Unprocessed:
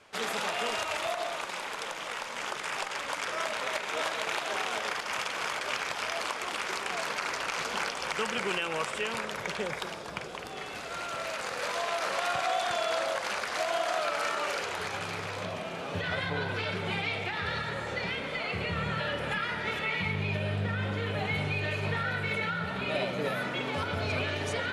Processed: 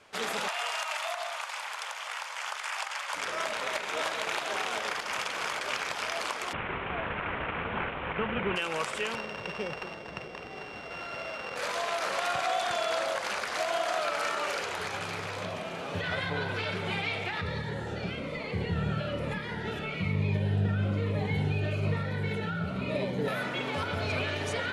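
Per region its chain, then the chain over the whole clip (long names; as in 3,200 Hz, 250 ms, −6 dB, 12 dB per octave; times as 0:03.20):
0:00.48–0:03.14: high-pass filter 700 Hz 24 dB per octave + notch filter 3,800 Hz, Q 25
0:06.53–0:08.56: variable-slope delta modulation 16 kbit/s + parametric band 82 Hz +10.5 dB 2.9 octaves
0:09.15–0:11.56: samples sorted by size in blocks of 16 samples + high-frequency loss of the air 180 metres
0:17.41–0:23.28: tilt shelving filter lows +5 dB, about 820 Hz + phaser whose notches keep moving one way falling 1.1 Hz
whole clip: no processing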